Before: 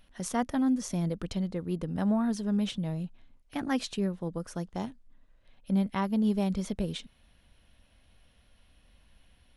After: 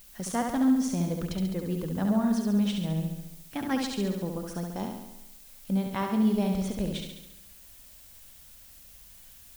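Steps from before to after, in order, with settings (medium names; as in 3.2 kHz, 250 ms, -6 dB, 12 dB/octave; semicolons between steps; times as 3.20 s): added noise blue -54 dBFS; on a send: flutter echo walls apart 11.8 m, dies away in 0.9 s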